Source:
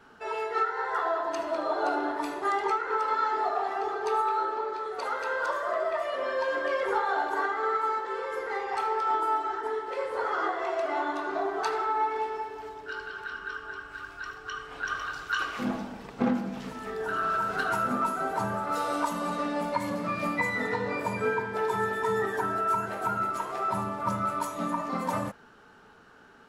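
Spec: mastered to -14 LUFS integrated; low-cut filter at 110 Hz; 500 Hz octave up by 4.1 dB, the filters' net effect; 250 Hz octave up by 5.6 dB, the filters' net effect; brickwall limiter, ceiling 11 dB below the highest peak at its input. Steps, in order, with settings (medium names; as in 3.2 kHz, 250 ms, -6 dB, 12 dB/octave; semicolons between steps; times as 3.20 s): high-pass 110 Hz; peaking EQ 250 Hz +6 dB; peaking EQ 500 Hz +3.5 dB; trim +15.5 dB; peak limiter -5 dBFS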